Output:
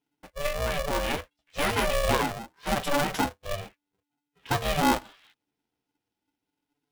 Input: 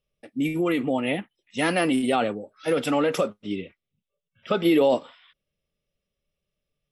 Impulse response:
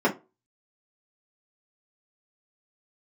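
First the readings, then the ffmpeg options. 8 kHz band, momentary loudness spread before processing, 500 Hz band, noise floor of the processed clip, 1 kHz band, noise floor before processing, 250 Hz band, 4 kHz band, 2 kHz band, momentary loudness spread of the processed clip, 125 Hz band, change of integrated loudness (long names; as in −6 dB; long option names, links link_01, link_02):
+5.0 dB, 13 LU, −6.0 dB, below −85 dBFS, +1.5 dB, −85 dBFS, −8.5 dB, +1.5 dB, 0.0 dB, 12 LU, +1.0 dB, −3.5 dB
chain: -af "flanger=delay=6.8:depth=6.6:regen=-1:speed=0.44:shape=triangular,aeval=exprs='val(0)*sgn(sin(2*PI*290*n/s))':channel_layout=same"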